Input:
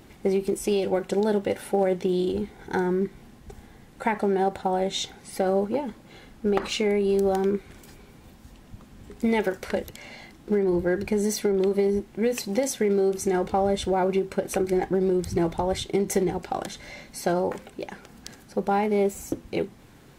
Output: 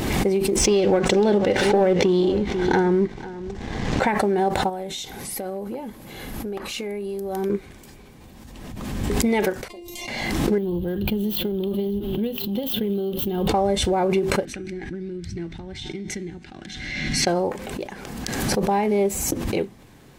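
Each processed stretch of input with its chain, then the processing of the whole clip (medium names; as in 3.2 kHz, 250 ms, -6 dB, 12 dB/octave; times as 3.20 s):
0.56–4.07 s: low-pass 6.5 kHz 24 dB/octave + waveshaping leveller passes 1 + delay 494 ms -16 dB
4.69–7.50 s: peaking EQ 12 kHz +14.5 dB 0.44 oct + compression 2.5:1, threshold -33 dBFS + overload inside the chain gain 24.5 dB
9.68–10.08 s: Butterworth band-stop 1.6 kHz, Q 1.9 + feedback comb 350 Hz, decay 0.22 s, mix 100%
10.58–13.48 s: dead-time distortion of 0.051 ms + FFT filter 210 Hz 0 dB, 340 Hz -6 dB, 480 Hz -8 dB, 1.4 kHz -10 dB, 2.2 kHz -19 dB, 3.1 kHz +7 dB, 5.5 kHz -20 dB, 8.6 kHz -21 dB, 13 kHz +4 dB + delay 555 ms -21 dB
14.45–17.27 s: low-pass 4.6 kHz + high-order bell 700 Hz -15 dB + feedback comb 150 Hz, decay 1.8 s
whole clip: band-stop 1.4 kHz, Q 14; swell ahead of each attack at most 31 dB/s; trim +2 dB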